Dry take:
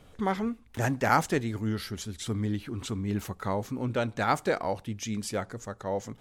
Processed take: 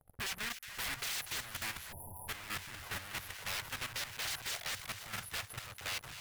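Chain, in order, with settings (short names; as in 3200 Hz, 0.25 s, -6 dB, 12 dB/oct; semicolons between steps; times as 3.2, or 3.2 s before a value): rattling part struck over -33 dBFS, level -13 dBFS; dynamic EQ 1900 Hz, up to +6 dB, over -41 dBFS, Q 2.4; FFT band-reject 830–9900 Hz; wrapped overs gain 32.5 dB; added harmonics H 6 -28 dB, 7 -21 dB, 8 -38 dB, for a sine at -32.5 dBFS; EQ curve 130 Hz 0 dB, 240 Hz -17 dB, 1800 Hz +7 dB; split-band echo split 1500 Hz, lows 0.49 s, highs 0.244 s, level -7.5 dB; transient shaper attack +2 dB, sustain -8 dB; sample leveller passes 3; spectral delete 1.92–2.28, 1000–9600 Hz; limiter -33 dBFS, peak gain reduction 15.5 dB; level quantiser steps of 10 dB; gain +2 dB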